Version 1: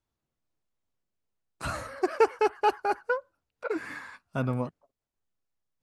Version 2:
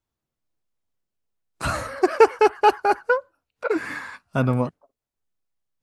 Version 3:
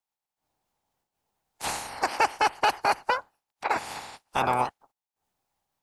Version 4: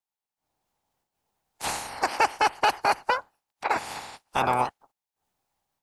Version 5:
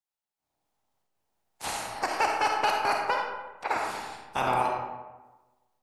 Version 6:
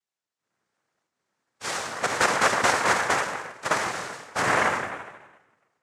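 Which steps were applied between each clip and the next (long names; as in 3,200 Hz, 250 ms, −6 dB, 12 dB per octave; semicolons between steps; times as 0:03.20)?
noise reduction from a noise print of the clip's start 8 dB; level +8 dB
ceiling on every frequency bin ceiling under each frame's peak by 28 dB; parametric band 830 Hz +13.5 dB 0.5 octaves; brickwall limiter −4 dBFS, peak gain reduction 7.5 dB; level −8 dB
automatic gain control gain up to 5 dB; level −4 dB
comb and all-pass reverb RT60 1.2 s, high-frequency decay 0.55×, pre-delay 10 ms, DRR 0.5 dB; level −4.5 dB
cochlear-implant simulation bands 3; level +4 dB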